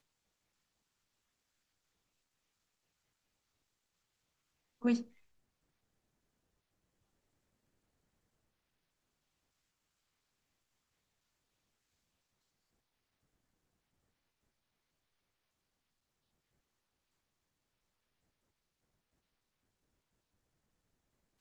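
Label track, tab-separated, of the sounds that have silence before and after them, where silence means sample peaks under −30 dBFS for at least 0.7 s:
4.850000	4.960000	sound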